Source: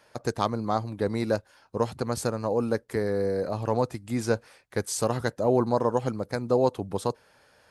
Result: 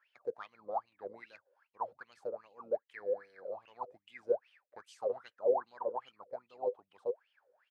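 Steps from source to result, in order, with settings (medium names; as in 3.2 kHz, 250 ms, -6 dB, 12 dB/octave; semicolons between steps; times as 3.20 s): wah-wah 2.5 Hz 490–3100 Hz, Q 19; harmony voices -4 st -15 dB; trim +2.5 dB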